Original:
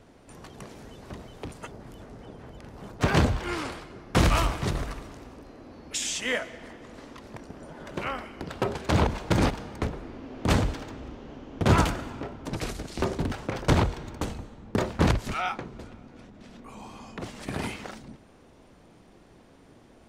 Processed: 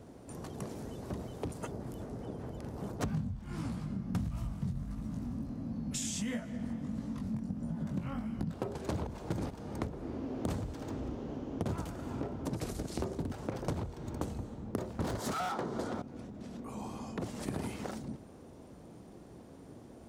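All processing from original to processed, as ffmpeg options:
-filter_complex "[0:a]asettb=1/sr,asplit=3[a][b][c];[a]atrim=end=3.054[d];[b]atrim=start=3.05:end=8.54,asetpts=PTS-STARTPTS,afade=t=in:d=0.004:c=qsin,afade=t=out:st=5.486:d=0.004:c=qsin,lowshelf=f=280:t=q:w=3:g=9.5,flanger=delay=17.5:depth=4.9:speed=1.5[e];[c]atrim=start=8.536[f];[d][e]acrossfade=d=0.004:c1=hsin:c2=qsin[g];[g][f]acrossfade=d=0.004:c1=qsin:c2=hsin,asettb=1/sr,asplit=3[h][i][j];[h]atrim=end=15.044[k];[i]atrim=start=15.04:end=16.02,asetpts=PTS-STARTPTS,afade=t=in:d=0.004:c=qsin,afade=t=out:st=0.976:d=0.004:c=qsin,equalizer=f=2.5k:w=3.3:g=-10,asplit=2[l][m];[m]highpass=f=720:p=1,volume=29dB,asoftclip=type=tanh:threshold=-11.5dB[n];[l][n]amix=inputs=2:normalize=0,lowpass=f=5k:p=1,volume=-6dB[o];[j]atrim=start=16.016[p];[k][o]acrossfade=d=0.004:c1=hsin:c2=qsin[q];[q][p]acrossfade=d=0.004:c1=qsin:c2=hsin,highpass=62,equalizer=f=2.4k:t=o:w=2.7:g=-11,acompressor=threshold=-37dB:ratio=12,volume=4.5dB"

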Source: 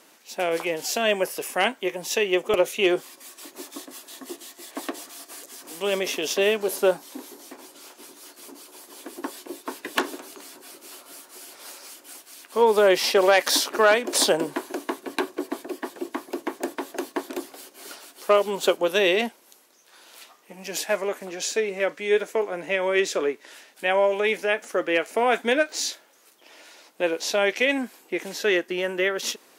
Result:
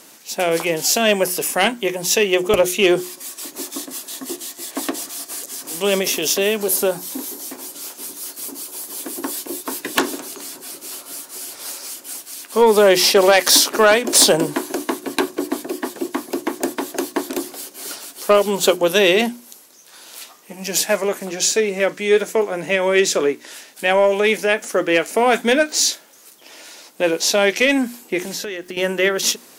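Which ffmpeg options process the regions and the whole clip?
-filter_complex "[0:a]asettb=1/sr,asplit=3[a][b][c];[a]atrim=end=6.014[d];[b]atrim=start=6.01:end=9.83,asetpts=PTS-STARTPTS,afade=t=in:d=0.004:c=qsin,afade=t=out:st=3.816:d=0.004:c=qsin,highshelf=f=10k:g=7.5,acompressor=threshold=-29dB:ratio=1.5:attack=3.2:release=140:knee=1:detection=peak[e];[c]atrim=start=9.826[f];[d][e]acrossfade=d=0.004:c1=hsin:c2=qsin[g];[g][f]acrossfade=d=0.004:c1=qsin:c2=hsin,asettb=1/sr,asplit=3[h][i][j];[h]atrim=end=28.194[k];[i]atrim=start=28.19:end=28.77,asetpts=PTS-STARTPTS,afade=t=in:d=0.004:c=qsin,afade=t=out:st=0.576:d=0.004:c=qsin,acompressor=threshold=-34dB:ratio=4:attack=3.2:release=140:knee=1:detection=peak,aeval=exprs='val(0)*gte(abs(val(0)),0.00106)':c=same[l];[j]atrim=start=28.766[m];[k][l]acrossfade=d=0.004:c1=hsin:c2=qsin[n];[n][m]acrossfade=d=0.004:c1=qsin:c2=hsin,bass=f=250:g=9,treble=f=4k:g=7,bandreject=f=60:t=h:w=6,bandreject=f=120:t=h:w=6,bandreject=f=180:t=h:w=6,bandreject=f=240:t=h:w=6,bandreject=f=300:t=h:w=6,bandreject=f=360:t=h:w=6,acontrast=76,volume=-1dB"

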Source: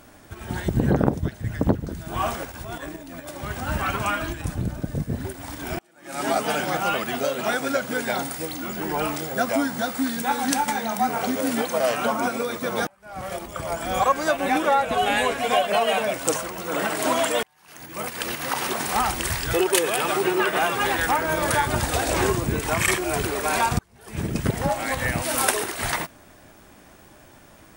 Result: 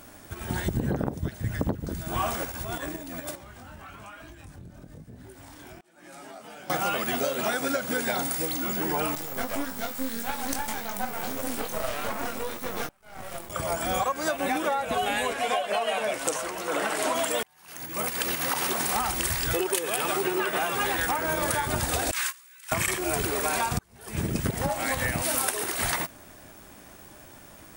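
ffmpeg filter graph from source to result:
-filter_complex "[0:a]asettb=1/sr,asplit=3[a][b][c];[a]atrim=end=3.354[d];[b]atrim=start=3.35:end=6.7,asetpts=PTS-STARTPTS,afade=t=in:d=0.004:c=qsin,afade=t=out:st=3.346:d=0.004:c=qsin,highshelf=f=10k:g=-8.5,flanger=delay=16.5:depth=6.5:speed=1.1,acompressor=threshold=-45dB:ratio=4:attack=3.2:release=140:knee=1:detection=peak[e];[c]atrim=start=6.696[f];[d][e]acrossfade=d=0.004:c1=hsin:c2=qsin[g];[g][f]acrossfade=d=0.004:c1=qsin:c2=hsin,asettb=1/sr,asplit=3[h][i][j];[h]atrim=end=9.154[k];[i]atrim=start=9.15:end=13.5,asetpts=PTS-STARTPTS,afade=t=in:d=0.004:c=qsin,afade=t=out:st=4.346:d=0.004:c=qsin,flanger=delay=19.5:depth=3.8:speed=1.7,aeval=exprs='max(val(0),0)':c=same[l];[j]atrim=start=13.496[m];[k][l]acrossfade=d=0.004:c1=hsin:c2=qsin[n];[n][m]acrossfade=d=0.004:c1=qsin:c2=hsin,asettb=1/sr,asplit=3[o][p][q];[o]atrim=end=15.334[r];[p]atrim=start=15.33:end=17.15,asetpts=PTS-STARTPTS,afade=t=in:d=0.004:c=qsin,afade=t=out:st=1.816:d=0.004:c=qsin,lowpass=12k,bass=f=250:g=-9,treble=f=4k:g=-3,asplit=2[s][t];[t]adelay=14,volume=-12dB[u];[s][u]amix=inputs=2:normalize=0,atrim=end_sample=80262[v];[q]atrim=start=17.146[w];[r][v]acrossfade=d=0.004:c1=hsin:c2=qsin[x];[x][w]acrossfade=d=0.004:c1=qsin:c2=hsin,asettb=1/sr,asplit=3[y][z][aa];[y]atrim=end=22.114[ab];[z]atrim=start=22.11:end=22.72,asetpts=PTS-STARTPTS,afade=t=in:d=0.004:c=qsin,afade=t=out:st=0.606:d=0.004:c=qsin,highpass=f=1.4k:w=0.5412,highpass=f=1.4k:w=1.3066,agate=range=-20dB:threshold=-31dB:ratio=16:release=100:detection=peak[ac];[aa]atrim=start=22.716[ad];[ab][ac]acrossfade=d=0.004:c1=hsin:c2=qsin[ae];[ae][ad]acrossfade=d=0.004:c1=qsin:c2=hsin,highshelf=f=7.1k:g=6.5,acompressor=threshold=-23dB:ratio=10"

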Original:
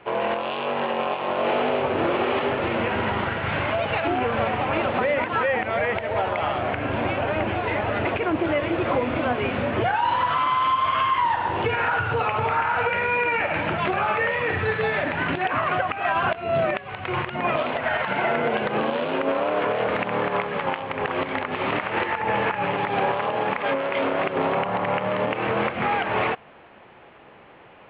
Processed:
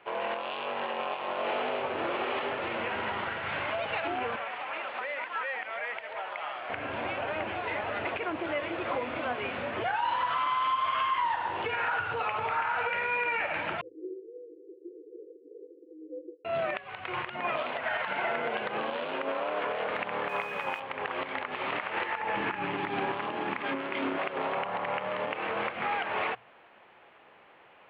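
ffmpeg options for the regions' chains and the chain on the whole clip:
-filter_complex "[0:a]asettb=1/sr,asplit=3[a][b][c];[a]atrim=end=4.364[d];[b]atrim=start=4.36:end=6.7,asetpts=PTS-STARTPTS,afade=t=in:d=0.004:c=qsin,afade=t=out:st=2.336:d=0.004:c=qsin,highpass=f=1.2k:p=1,acrossover=split=3800[e][f];[f]adelay=140[g];[e][g]amix=inputs=2:normalize=0,atrim=end_sample=103194[h];[c]atrim=start=6.696[i];[d][h]acrossfade=d=0.004:c1=hsin:c2=qsin[j];[j][i]acrossfade=d=0.004:c1=qsin:c2=hsin,asettb=1/sr,asplit=3[k][l][m];[k]atrim=end=13.814[n];[l]atrim=start=13.81:end=16.45,asetpts=PTS-STARTPTS,afade=t=in:d=0.004:c=qsin,afade=t=out:st=2.636:d=0.004:c=qsin,asuperpass=centerf=880:order=20:qfactor=4.4,afreqshift=-480[o];[m]atrim=start=16.446[p];[n][o]acrossfade=d=0.004:c1=hsin:c2=qsin[q];[q][p]acrossfade=d=0.004:c1=qsin:c2=hsin,asettb=1/sr,asplit=3[r][s][t];[r]atrim=end=20.294[u];[s]atrim=start=20.29:end=20.8,asetpts=PTS-STARTPTS,afade=t=in:d=0.004:c=qsin,afade=t=out:st=0.506:d=0.004:c=qsin,aeval=exprs='val(0)+0.0224*sin(2*PI*2500*n/s)':c=same,aeval=exprs='sgn(val(0))*max(abs(val(0))-0.00266,0)':c=same[v];[t]atrim=start=20.796[w];[u][v]acrossfade=d=0.004:c1=hsin:c2=qsin[x];[x][w]acrossfade=d=0.004:c1=qsin:c2=hsin,asettb=1/sr,asplit=3[y][z][aa];[y]atrim=end=22.364[ab];[z]atrim=start=22.36:end=24.18,asetpts=PTS-STARTPTS,afade=t=in:d=0.004:c=qsin,afade=t=out:st=1.816:d=0.004:c=qsin,highpass=54,lowshelf=f=410:t=q:w=3:g=6[ac];[aa]atrim=start=24.176[ad];[ab][ac]acrossfade=d=0.004:c1=hsin:c2=qsin[ae];[ae][ad]acrossfade=d=0.004:c1=qsin:c2=hsin,lowshelf=f=360:g=-12,bandreject=f=60:t=h:w=6,bandreject=f=120:t=h:w=6,volume=-5.5dB"

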